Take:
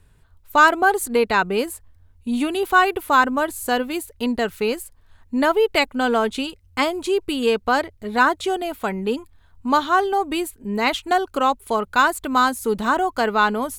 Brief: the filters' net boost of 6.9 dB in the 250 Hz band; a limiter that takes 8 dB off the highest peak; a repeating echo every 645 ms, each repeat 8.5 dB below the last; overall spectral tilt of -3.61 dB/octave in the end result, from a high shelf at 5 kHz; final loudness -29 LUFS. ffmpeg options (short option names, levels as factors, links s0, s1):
-af "equalizer=f=250:t=o:g=8,highshelf=f=5000:g=-5,alimiter=limit=0.316:level=0:latency=1,aecho=1:1:645|1290|1935|2580:0.376|0.143|0.0543|0.0206,volume=0.355"